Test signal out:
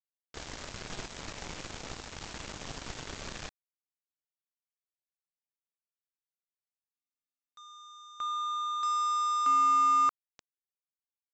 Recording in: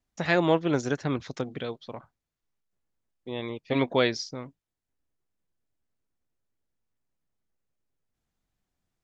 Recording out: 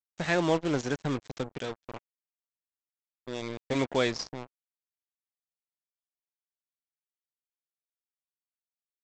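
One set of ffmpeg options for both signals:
-af "aeval=exprs='val(0)+0.5*0.0158*sgn(val(0))':c=same,aresample=16000,acrusher=bits=4:mix=0:aa=0.5,aresample=44100,volume=-4dB"

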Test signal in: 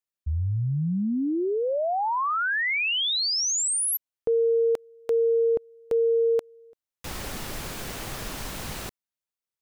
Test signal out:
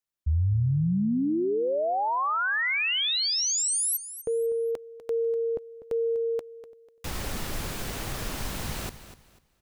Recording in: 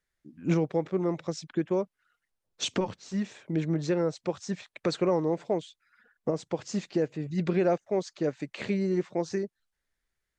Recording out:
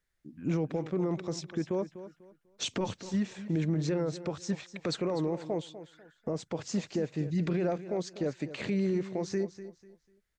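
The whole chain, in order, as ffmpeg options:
-af "alimiter=limit=-23.5dB:level=0:latency=1:release=25,lowshelf=f=160:g=4.5,aecho=1:1:247|494|741:0.211|0.0571|0.0154"

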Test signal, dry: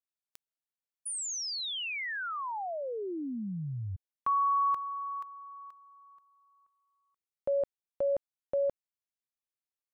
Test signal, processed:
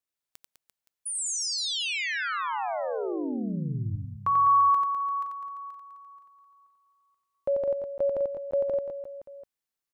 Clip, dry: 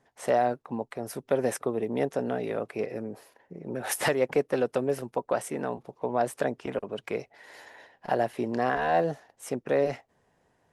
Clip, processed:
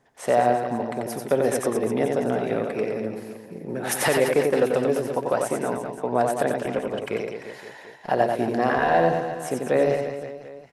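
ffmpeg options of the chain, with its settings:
-af "aecho=1:1:90|202.5|343.1|518.9|738.6:0.631|0.398|0.251|0.158|0.1,volume=3.5dB"

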